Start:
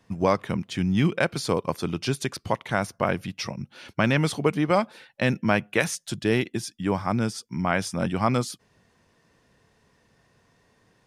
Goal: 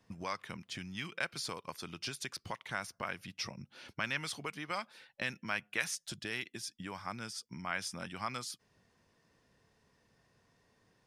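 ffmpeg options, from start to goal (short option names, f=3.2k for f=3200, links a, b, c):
-filter_complex "[0:a]equalizer=f=5.1k:w=3.9:g=3,acrossover=split=1100[a][b];[a]acompressor=threshold=-35dB:ratio=10[c];[c][b]amix=inputs=2:normalize=0,volume=-8dB"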